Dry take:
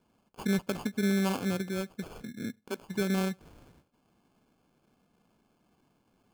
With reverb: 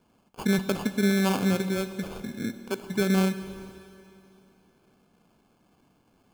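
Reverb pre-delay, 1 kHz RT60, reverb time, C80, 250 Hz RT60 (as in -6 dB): 13 ms, 2.8 s, 2.8 s, 12.5 dB, 2.8 s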